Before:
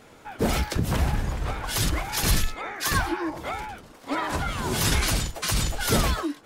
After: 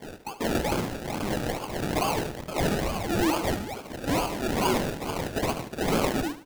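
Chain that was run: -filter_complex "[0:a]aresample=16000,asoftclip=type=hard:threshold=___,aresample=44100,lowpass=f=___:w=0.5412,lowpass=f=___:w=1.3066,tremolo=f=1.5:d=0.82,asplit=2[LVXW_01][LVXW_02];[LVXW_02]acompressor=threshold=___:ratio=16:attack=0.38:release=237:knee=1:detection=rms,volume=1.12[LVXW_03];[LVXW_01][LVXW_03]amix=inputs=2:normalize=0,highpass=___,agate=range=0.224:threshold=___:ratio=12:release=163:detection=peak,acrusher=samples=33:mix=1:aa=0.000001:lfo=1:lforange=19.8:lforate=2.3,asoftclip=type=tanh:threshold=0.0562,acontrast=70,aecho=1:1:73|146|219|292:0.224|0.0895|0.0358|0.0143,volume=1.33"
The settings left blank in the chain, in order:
0.0473, 3200, 3200, 0.00794, 240, 0.00447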